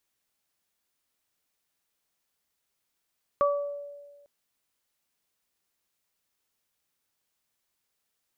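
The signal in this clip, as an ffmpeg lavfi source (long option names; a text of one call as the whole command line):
ffmpeg -f lavfi -i "aevalsrc='0.0944*pow(10,-3*t/1.49)*sin(2*PI*574*t)+0.0944*pow(10,-3*t/0.49)*sin(2*PI*1148*t)':duration=0.85:sample_rate=44100" out.wav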